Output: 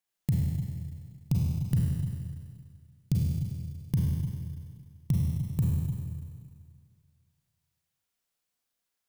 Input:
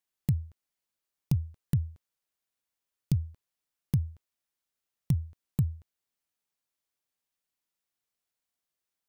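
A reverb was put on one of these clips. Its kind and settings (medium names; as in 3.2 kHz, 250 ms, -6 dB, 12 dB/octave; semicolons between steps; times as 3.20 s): Schroeder reverb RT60 2 s, combs from 33 ms, DRR -3.5 dB; trim -1 dB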